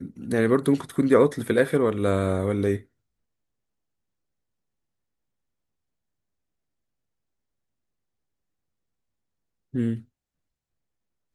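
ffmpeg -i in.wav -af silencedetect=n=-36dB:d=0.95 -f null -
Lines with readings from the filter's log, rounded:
silence_start: 2.80
silence_end: 9.74 | silence_duration: 6.94
silence_start: 9.99
silence_end: 11.34 | silence_duration: 1.35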